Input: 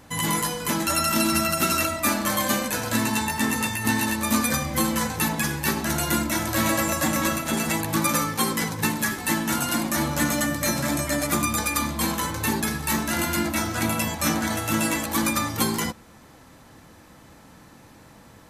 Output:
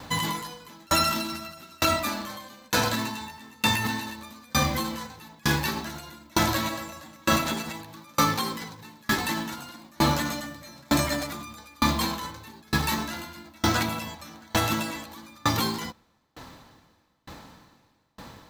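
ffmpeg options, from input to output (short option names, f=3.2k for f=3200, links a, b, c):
-af "acrusher=bits=4:mode=log:mix=0:aa=0.000001,alimiter=limit=-17dB:level=0:latency=1:release=60,equalizer=f=1k:t=o:w=0.67:g=4,equalizer=f=4k:t=o:w=0.67:g=7,equalizer=f=10k:t=o:w=0.67:g=-8,aeval=exprs='val(0)*pow(10,-35*if(lt(mod(1.1*n/s,1),2*abs(1.1)/1000),1-mod(1.1*n/s,1)/(2*abs(1.1)/1000),(mod(1.1*n/s,1)-2*abs(1.1)/1000)/(1-2*abs(1.1)/1000))/20)':c=same,volume=7.5dB"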